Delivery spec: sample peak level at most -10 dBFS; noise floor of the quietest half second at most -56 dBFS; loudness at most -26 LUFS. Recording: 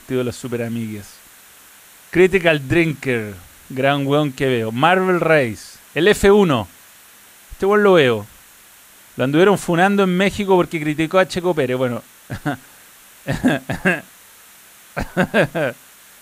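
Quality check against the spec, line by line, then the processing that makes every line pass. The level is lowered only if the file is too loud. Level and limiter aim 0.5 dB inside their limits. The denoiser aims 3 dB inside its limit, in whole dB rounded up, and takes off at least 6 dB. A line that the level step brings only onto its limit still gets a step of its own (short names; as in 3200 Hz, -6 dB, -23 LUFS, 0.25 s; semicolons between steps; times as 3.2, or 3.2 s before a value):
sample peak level -2.5 dBFS: fail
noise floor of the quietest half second -46 dBFS: fail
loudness -17.5 LUFS: fail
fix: denoiser 6 dB, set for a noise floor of -46 dBFS; gain -9 dB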